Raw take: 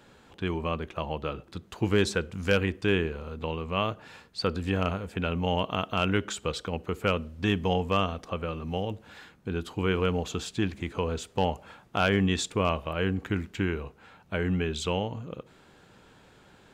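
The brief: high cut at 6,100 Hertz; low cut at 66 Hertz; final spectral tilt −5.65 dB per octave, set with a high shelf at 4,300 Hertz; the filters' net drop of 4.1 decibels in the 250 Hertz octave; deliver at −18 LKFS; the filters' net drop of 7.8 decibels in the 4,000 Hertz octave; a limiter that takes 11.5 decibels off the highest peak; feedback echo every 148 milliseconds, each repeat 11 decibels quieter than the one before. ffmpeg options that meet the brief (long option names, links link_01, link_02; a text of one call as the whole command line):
ffmpeg -i in.wav -af "highpass=66,lowpass=6100,equalizer=frequency=250:width_type=o:gain=-6,equalizer=frequency=4000:width_type=o:gain=-7.5,highshelf=frequency=4300:gain=-7,alimiter=limit=-24dB:level=0:latency=1,aecho=1:1:148|296|444:0.282|0.0789|0.0221,volume=19.5dB" out.wav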